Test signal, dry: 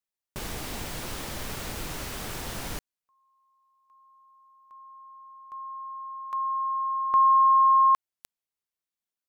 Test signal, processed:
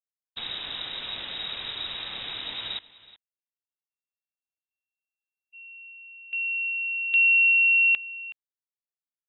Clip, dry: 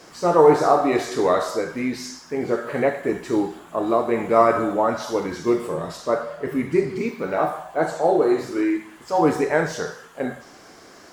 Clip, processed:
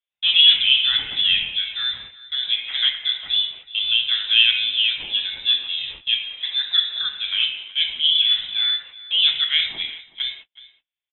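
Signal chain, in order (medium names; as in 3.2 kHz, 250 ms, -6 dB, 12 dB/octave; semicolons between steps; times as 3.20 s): frequency inversion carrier 3.8 kHz; gate -38 dBFS, range -46 dB; delay 372 ms -19 dB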